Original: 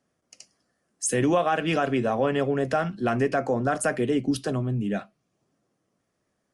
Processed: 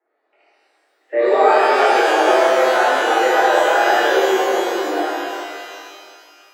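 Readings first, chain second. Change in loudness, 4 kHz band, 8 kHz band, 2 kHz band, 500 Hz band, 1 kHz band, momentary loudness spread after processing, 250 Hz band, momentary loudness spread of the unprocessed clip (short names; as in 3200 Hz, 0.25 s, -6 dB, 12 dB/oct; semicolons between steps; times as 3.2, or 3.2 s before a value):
+10.0 dB, +14.5 dB, +1.5 dB, +14.0 dB, +10.5 dB, +14.5 dB, 12 LU, +0.5 dB, 5 LU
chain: mistuned SSB +94 Hz 270–2100 Hz; flutter echo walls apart 4.4 m, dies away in 0.22 s; shimmer reverb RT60 2.3 s, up +12 st, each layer -8 dB, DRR -10.5 dB; gain -1 dB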